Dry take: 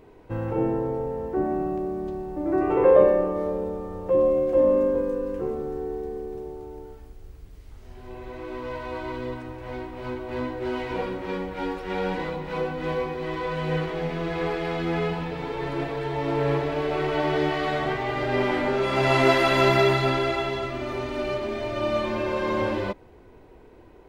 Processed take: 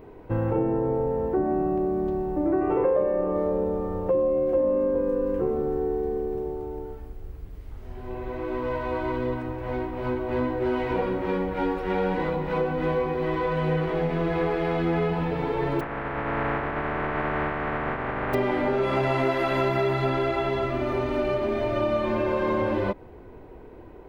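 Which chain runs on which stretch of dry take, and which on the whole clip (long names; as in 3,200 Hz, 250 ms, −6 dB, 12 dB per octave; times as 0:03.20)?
0:15.79–0:18.33: compressing power law on the bin magnitudes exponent 0.15 + low-pass filter 1,900 Hz 24 dB per octave
whole clip: downward compressor 5 to 1, threshold −26 dBFS; parametric band 6,600 Hz −11 dB 2.4 octaves; level +5.5 dB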